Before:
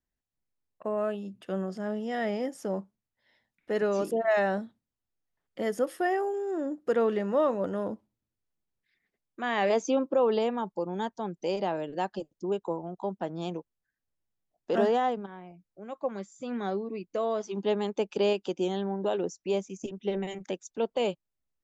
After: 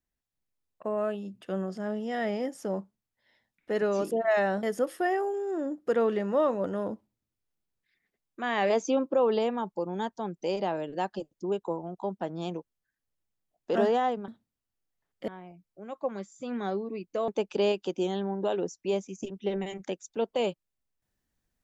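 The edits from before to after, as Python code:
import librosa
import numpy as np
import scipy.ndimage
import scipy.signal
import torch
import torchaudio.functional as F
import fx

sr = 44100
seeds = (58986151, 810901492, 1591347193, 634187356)

y = fx.edit(x, sr, fx.move(start_s=4.63, length_s=1.0, to_s=15.28),
    fx.cut(start_s=17.28, length_s=0.61), tone=tone)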